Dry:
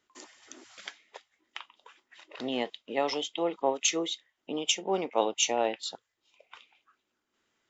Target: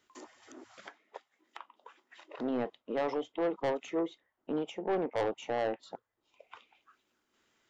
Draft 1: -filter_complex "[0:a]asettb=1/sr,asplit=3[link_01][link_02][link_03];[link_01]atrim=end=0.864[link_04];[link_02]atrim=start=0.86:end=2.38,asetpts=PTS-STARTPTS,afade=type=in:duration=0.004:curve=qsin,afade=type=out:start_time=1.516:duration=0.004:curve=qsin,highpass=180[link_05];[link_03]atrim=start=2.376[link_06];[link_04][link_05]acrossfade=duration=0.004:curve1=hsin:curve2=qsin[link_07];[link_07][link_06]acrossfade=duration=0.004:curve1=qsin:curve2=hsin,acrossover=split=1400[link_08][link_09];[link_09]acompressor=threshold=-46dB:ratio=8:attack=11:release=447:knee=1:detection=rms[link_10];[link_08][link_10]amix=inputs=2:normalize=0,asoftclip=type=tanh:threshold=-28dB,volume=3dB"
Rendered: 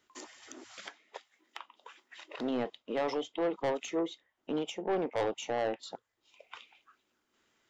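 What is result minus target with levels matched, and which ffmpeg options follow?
downward compressor: peak gain reduction −10 dB
-filter_complex "[0:a]asettb=1/sr,asplit=3[link_01][link_02][link_03];[link_01]atrim=end=0.864[link_04];[link_02]atrim=start=0.86:end=2.38,asetpts=PTS-STARTPTS,afade=type=in:duration=0.004:curve=qsin,afade=type=out:start_time=1.516:duration=0.004:curve=qsin,highpass=180[link_05];[link_03]atrim=start=2.376[link_06];[link_04][link_05]acrossfade=duration=0.004:curve1=hsin:curve2=qsin[link_07];[link_07][link_06]acrossfade=duration=0.004:curve1=qsin:curve2=hsin,acrossover=split=1400[link_08][link_09];[link_09]acompressor=threshold=-57.5dB:ratio=8:attack=11:release=447:knee=1:detection=rms[link_10];[link_08][link_10]amix=inputs=2:normalize=0,asoftclip=type=tanh:threshold=-28dB,volume=3dB"

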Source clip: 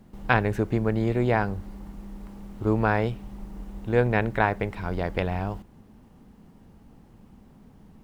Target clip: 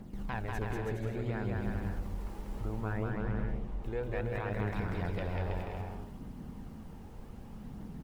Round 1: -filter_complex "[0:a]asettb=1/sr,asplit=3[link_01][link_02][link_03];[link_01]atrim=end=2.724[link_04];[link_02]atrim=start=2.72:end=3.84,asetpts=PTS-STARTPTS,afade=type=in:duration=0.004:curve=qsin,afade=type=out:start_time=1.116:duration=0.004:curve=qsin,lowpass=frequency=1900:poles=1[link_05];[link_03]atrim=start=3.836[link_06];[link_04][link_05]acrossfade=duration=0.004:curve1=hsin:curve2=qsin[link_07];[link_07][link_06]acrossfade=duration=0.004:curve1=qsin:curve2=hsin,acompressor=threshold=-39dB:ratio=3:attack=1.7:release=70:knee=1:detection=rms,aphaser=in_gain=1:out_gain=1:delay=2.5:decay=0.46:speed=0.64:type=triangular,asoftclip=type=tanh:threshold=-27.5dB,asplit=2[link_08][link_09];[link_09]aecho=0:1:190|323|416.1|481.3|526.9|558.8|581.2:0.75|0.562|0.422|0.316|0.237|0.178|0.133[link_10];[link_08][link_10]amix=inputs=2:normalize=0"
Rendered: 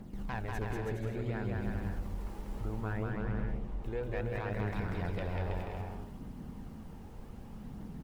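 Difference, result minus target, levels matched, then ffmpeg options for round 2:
soft clipping: distortion +15 dB
-filter_complex "[0:a]asettb=1/sr,asplit=3[link_01][link_02][link_03];[link_01]atrim=end=2.724[link_04];[link_02]atrim=start=2.72:end=3.84,asetpts=PTS-STARTPTS,afade=type=in:duration=0.004:curve=qsin,afade=type=out:start_time=1.116:duration=0.004:curve=qsin,lowpass=frequency=1900:poles=1[link_05];[link_03]atrim=start=3.836[link_06];[link_04][link_05]acrossfade=duration=0.004:curve1=hsin:curve2=qsin[link_07];[link_07][link_06]acrossfade=duration=0.004:curve1=qsin:curve2=hsin,acompressor=threshold=-39dB:ratio=3:attack=1.7:release=70:knee=1:detection=rms,aphaser=in_gain=1:out_gain=1:delay=2.5:decay=0.46:speed=0.64:type=triangular,asoftclip=type=tanh:threshold=-19dB,asplit=2[link_08][link_09];[link_09]aecho=0:1:190|323|416.1|481.3|526.9|558.8|581.2:0.75|0.562|0.422|0.316|0.237|0.178|0.133[link_10];[link_08][link_10]amix=inputs=2:normalize=0"

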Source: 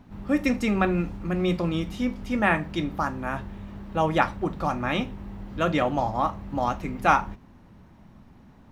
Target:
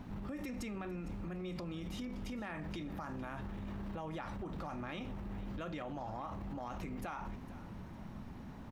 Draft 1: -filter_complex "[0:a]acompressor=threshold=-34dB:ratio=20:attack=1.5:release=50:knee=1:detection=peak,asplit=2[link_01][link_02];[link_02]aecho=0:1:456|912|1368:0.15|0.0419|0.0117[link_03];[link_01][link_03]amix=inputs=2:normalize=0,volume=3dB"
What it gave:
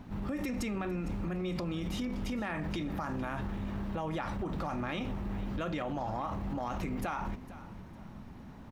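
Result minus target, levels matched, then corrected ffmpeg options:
downward compressor: peak gain reduction −7 dB
-filter_complex "[0:a]acompressor=threshold=-41.5dB:ratio=20:attack=1.5:release=50:knee=1:detection=peak,asplit=2[link_01][link_02];[link_02]aecho=0:1:456|912|1368:0.15|0.0419|0.0117[link_03];[link_01][link_03]amix=inputs=2:normalize=0,volume=3dB"

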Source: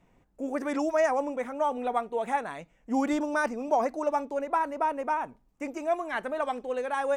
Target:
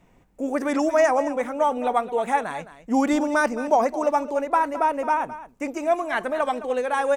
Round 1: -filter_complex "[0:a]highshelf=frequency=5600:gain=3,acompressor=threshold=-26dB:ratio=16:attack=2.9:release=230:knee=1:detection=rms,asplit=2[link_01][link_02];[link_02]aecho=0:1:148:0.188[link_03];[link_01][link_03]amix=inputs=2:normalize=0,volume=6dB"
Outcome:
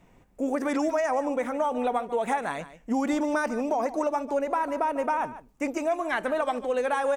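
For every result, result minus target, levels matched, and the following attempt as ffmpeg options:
downward compressor: peak gain reduction +10.5 dB; echo 66 ms early
-filter_complex "[0:a]highshelf=frequency=5600:gain=3,asplit=2[link_01][link_02];[link_02]aecho=0:1:148:0.188[link_03];[link_01][link_03]amix=inputs=2:normalize=0,volume=6dB"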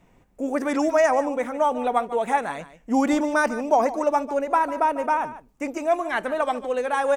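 echo 66 ms early
-filter_complex "[0:a]highshelf=frequency=5600:gain=3,asplit=2[link_01][link_02];[link_02]aecho=0:1:214:0.188[link_03];[link_01][link_03]amix=inputs=2:normalize=0,volume=6dB"

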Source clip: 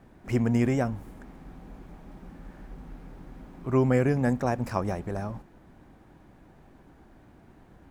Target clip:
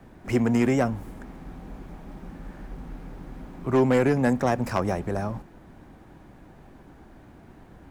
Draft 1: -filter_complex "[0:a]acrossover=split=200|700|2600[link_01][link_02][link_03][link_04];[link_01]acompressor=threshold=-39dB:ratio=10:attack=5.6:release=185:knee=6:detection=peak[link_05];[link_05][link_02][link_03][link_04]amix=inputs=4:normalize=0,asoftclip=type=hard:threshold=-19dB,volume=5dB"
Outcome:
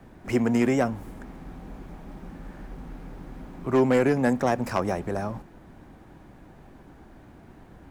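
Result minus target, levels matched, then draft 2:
downward compressor: peak gain reduction +5.5 dB
-filter_complex "[0:a]acrossover=split=200|700|2600[link_01][link_02][link_03][link_04];[link_01]acompressor=threshold=-33dB:ratio=10:attack=5.6:release=185:knee=6:detection=peak[link_05];[link_05][link_02][link_03][link_04]amix=inputs=4:normalize=0,asoftclip=type=hard:threshold=-19dB,volume=5dB"

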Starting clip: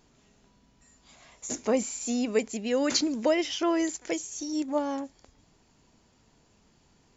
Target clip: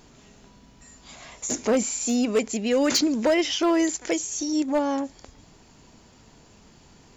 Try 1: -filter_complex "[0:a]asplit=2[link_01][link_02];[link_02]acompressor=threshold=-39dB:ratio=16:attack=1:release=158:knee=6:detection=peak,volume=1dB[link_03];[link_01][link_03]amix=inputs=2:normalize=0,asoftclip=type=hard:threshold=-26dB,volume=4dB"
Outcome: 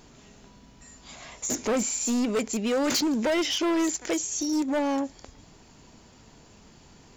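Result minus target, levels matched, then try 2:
hard clipping: distortion +9 dB
-filter_complex "[0:a]asplit=2[link_01][link_02];[link_02]acompressor=threshold=-39dB:ratio=16:attack=1:release=158:knee=6:detection=peak,volume=1dB[link_03];[link_01][link_03]amix=inputs=2:normalize=0,asoftclip=type=hard:threshold=-19.5dB,volume=4dB"

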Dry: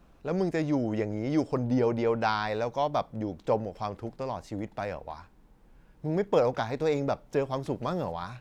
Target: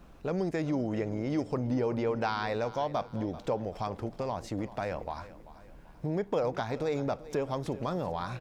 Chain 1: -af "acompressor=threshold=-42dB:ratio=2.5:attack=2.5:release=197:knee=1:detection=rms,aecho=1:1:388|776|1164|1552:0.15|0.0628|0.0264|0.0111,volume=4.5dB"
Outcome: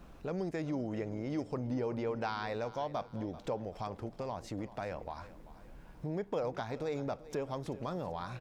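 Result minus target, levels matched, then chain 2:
downward compressor: peak gain reduction +5.5 dB
-af "acompressor=threshold=-33dB:ratio=2.5:attack=2.5:release=197:knee=1:detection=rms,aecho=1:1:388|776|1164|1552:0.15|0.0628|0.0264|0.0111,volume=4.5dB"

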